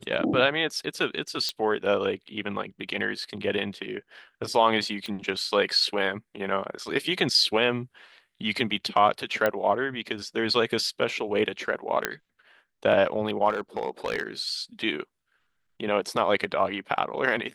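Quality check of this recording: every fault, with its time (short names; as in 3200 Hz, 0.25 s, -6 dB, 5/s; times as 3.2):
1.49 pop -14 dBFS
5.06 pop -23 dBFS
9.46 pop -11 dBFS
12.05 pop -8 dBFS
13.49–14.23 clipped -21 dBFS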